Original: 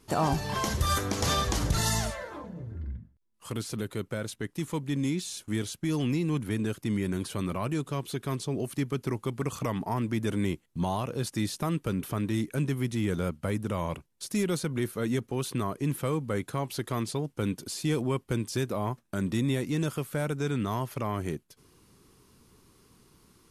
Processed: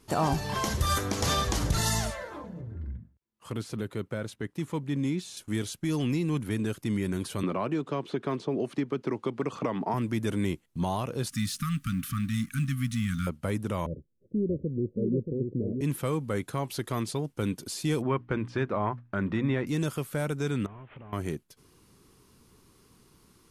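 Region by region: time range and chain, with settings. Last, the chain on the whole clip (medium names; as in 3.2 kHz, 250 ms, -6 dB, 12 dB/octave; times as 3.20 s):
2.61–5.37 s: high-pass 43 Hz + treble shelf 4 kHz -9 dB
7.43–9.94 s: band-pass 230–4400 Hz + tilt shelf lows +3.5 dB, about 1.3 kHz + three bands compressed up and down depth 100%
11.29–13.27 s: companding laws mixed up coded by mu + brick-wall FIR band-stop 280–1100 Hz
13.86–15.81 s: steep low-pass 550 Hz 72 dB/octave + delay 629 ms -5 dB
18.02–19.67 s: low-pass 2.2 kHz + peaking EQ 1.5 kHz +6.5 dB 2 oct + hum notches 60/120/180/240/300 Hz
20.66–21.13 s: one-bit delta coder 16 kbps, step -46.5 dBFS + compression 5:1, threshold -43 dBFS
whole clip: none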